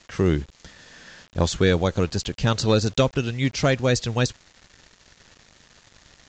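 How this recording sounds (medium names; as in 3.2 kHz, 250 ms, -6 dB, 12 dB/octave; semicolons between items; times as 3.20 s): a quantiser's noise floor 8-bit, dither none; µ-law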